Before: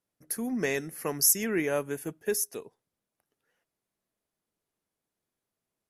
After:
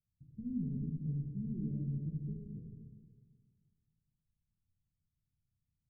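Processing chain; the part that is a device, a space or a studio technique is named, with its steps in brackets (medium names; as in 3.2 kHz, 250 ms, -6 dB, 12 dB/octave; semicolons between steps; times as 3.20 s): club heard from the street (peak limiter -20 dBFS, peak gain reduction 11.5 dB; low-pass 140 Hz 24 dB/octave; reverberation RT60 1.6 s, pre-delay 16 ms, DRR -2 dB); trim +8 dB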